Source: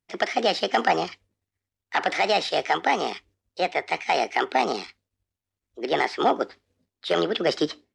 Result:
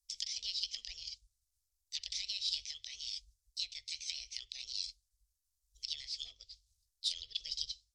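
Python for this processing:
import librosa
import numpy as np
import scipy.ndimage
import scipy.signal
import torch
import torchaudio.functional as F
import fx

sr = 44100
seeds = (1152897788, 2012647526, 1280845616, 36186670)

y = fx.env_lowpass_down(x, sr, base_hz=2400.0, full_db=-18.5)
y = scipy.signal.sosfilt(scipy.signal.cheby2(4, 60, [170.0, 1600.0], 'bandstop', fs=sr, output='sos'), y)
y = y * librosa.db_to_amplitude(8.5)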